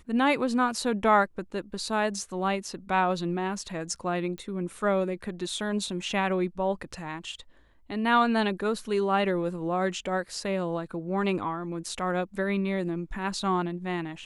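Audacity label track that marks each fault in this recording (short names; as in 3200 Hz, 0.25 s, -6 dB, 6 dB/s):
4.380000	4.380000	pop -26 dBFS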